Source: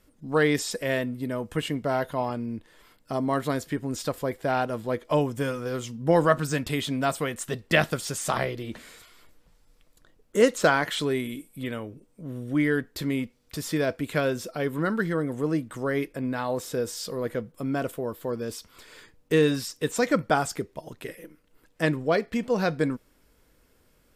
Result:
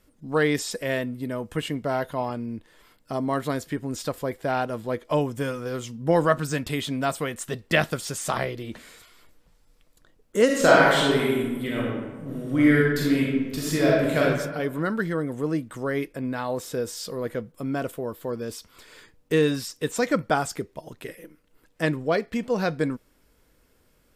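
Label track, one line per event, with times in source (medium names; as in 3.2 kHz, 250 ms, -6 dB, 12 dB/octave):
10.450000	14.200000	reverb throw, RT60 1.3 s, DRR -5 dB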